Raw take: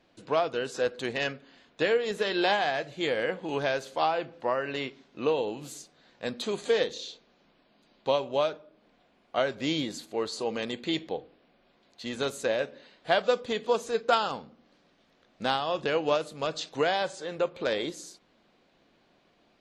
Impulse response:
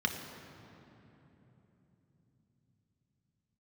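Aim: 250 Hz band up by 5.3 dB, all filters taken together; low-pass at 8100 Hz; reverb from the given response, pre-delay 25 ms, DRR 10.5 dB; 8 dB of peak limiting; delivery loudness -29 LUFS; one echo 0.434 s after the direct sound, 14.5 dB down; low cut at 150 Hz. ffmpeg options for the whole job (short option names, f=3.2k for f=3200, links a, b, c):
-filter_complex "[0:a]highpass=150,lowpass=8.1k,equalizer=f=250:t=o:g=7.5,alimiter=limit=-18.5dB:level=0:latency=1,aecho=1:1:434:0.188,asplit=2[a][b];[1:a]atrim=start_sample=2205,adelay=25[c];[b][c]afir=irnorm=-1:irlink=0,volume=-17.5dB[d];[a][d]amix=inputs=2:normalize=0,volume=1.5dB"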